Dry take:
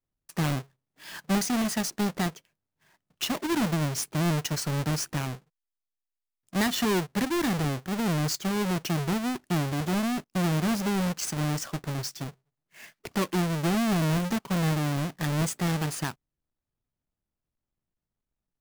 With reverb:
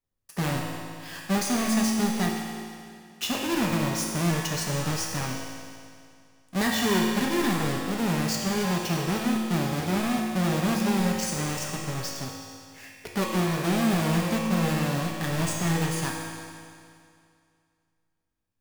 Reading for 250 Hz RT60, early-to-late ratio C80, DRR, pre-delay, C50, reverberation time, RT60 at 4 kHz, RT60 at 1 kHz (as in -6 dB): 2.3 s, 2.0 dB, -2.5 dB, 4 ms, 0.5 dB, 2.3 s, 2.2 s, 2.3 s